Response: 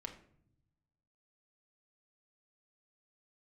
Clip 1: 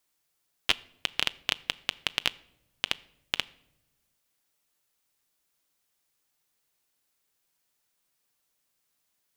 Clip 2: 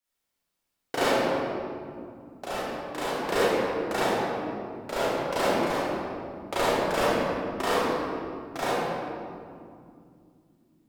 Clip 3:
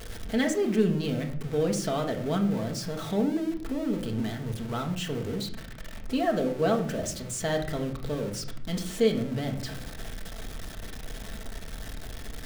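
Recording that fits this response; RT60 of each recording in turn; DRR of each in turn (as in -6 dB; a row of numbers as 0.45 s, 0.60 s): 3; no single decay rate, 2.4 s, no single decay rate; 15.5 dB, -11.0 dB, 2.5 dB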